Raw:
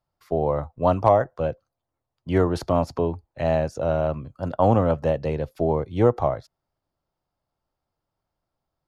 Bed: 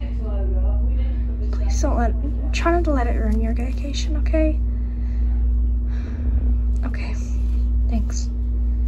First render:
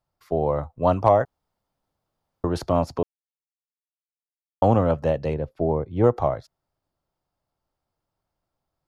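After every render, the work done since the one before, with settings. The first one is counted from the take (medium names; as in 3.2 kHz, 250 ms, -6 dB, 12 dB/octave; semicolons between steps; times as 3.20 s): 1.25–2.44 s: room tone; 3.03–4.62 s: mute; 5.34–6.04 s: low-pass 1.1 kHz 6 dB/octave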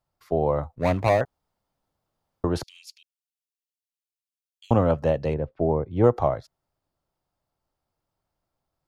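0.75–1.21 s: median filter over 41 samples; 2.63–4.71 s: steep high-pass 2.4 kHz 48 dB/octave; 5.34–5.91 s: low-pass 2.5 kHz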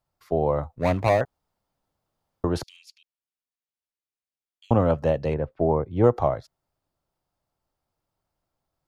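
2.76–4.80 s: treble shelf 4.1 kHz -9 dB; 5.30–5.82 s: dynamic bell 1.4 kHz, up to +6 dB, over -41 dBFS, Q 0.82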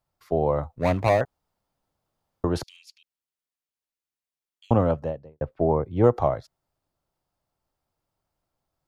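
4.72–5.41 s: studio fade out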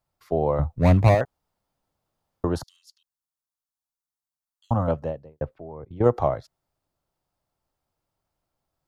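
0.59–1.15 s: tone controls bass +11 dB, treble +1 dB; 2.55–4.88 s: static phaser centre 990 Hz, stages 4; 5.58–6.06 s: level held to a coarse grid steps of 19 dB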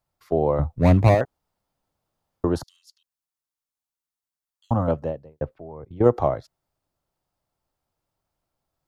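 dynamic bell 320 Hz, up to +4 dB, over -35 dBFS, Q 1.2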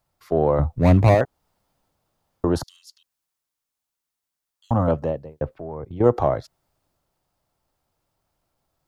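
in parallel at 0 dB: compression, threshold -27 dBFS, peak gain reduction 16 dB; on the sum: transient shaper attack -3 dB, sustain +2 dB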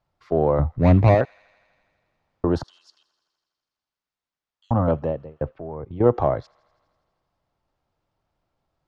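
distance through air 150 m; feedback echo behind a high-pass 82 ms, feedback 76%, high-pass 2.1 kHz, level -21 dB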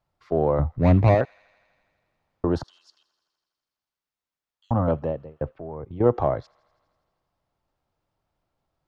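trim -2 dB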